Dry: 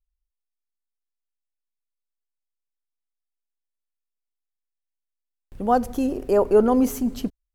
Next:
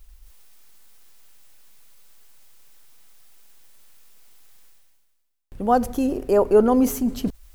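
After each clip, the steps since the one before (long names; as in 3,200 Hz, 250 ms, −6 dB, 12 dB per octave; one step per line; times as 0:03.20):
reversed playback
upward compression, threshold −22 dBFS
reversed playback
high-shelf EQ 11,000 Hz +3 dB
level +1 dB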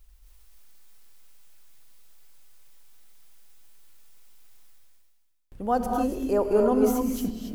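reverb whose tail is shaped and stops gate 310 ms rising, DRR 2.5 dB
level −6.5 dB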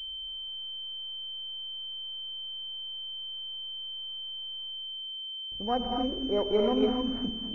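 switching amplifier with a slow clock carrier 3,100 Hz
level −4.5 dB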